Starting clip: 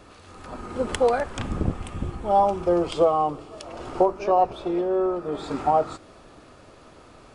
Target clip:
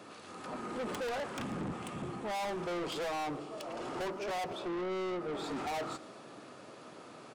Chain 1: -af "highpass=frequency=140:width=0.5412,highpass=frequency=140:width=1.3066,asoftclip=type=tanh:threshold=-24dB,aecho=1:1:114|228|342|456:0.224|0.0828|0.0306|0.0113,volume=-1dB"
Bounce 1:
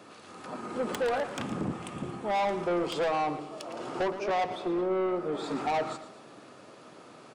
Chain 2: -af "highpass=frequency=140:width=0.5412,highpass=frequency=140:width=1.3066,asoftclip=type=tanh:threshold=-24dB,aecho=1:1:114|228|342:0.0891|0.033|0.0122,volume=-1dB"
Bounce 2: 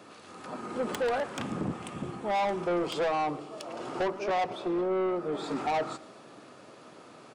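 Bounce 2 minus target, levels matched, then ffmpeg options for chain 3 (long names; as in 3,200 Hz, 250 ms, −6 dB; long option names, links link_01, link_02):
soft clipping: distortion −5 dB
-af "highpass=frequency=140:width=0.5412,highpass=frequency=140:width=1.3066,asoftclip=type=tanh:threshold=-33.5dB,aecho=1:1:114|228|342:0.0891|0.033|0.0122,volume=-1dB"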